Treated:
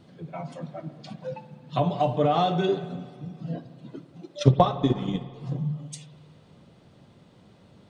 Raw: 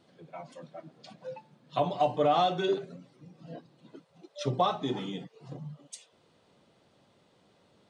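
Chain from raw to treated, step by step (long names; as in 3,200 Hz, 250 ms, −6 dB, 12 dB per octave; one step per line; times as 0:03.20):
0:04.39–0:05.34: transient designer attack +9 dB, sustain −9 dB
bass and treble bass +11 dB, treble −2 dB
in parallel at +1 dB: downward compressor, threshold −33 dBFS, peak gain reduction 20.5 dB
on the sum: spring reverb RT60 1.9 s, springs 53 ms, chirp 30 ms, DRR 12 dB
level −1 dB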